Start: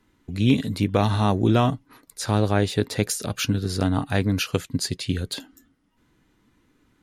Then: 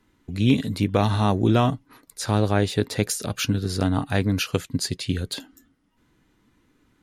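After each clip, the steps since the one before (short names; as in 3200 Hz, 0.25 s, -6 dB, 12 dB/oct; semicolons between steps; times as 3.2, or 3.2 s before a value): nothing audible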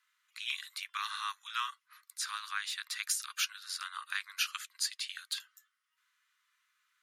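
steep high-pass 1100 Hz 72 dB/oct; gain -5 dB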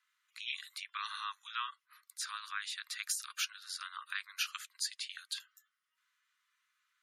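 spectral gate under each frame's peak -25 dB strong; gain -3 dB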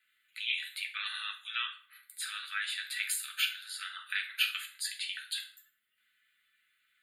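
fixed phaser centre 2500 Hz, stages 4; reverb RT60 0.45 s, pre-delay 5 ms, DRR 1 dB; gain +6.5 dB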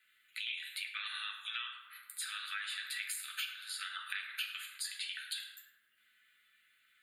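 compressor 5:1, threshold -41 dBFS, peak gain reduction 15.5 dB; tape echo 0.105 s, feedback 86%, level -6 dB, low-pass 1400 Hz; gain +3 dB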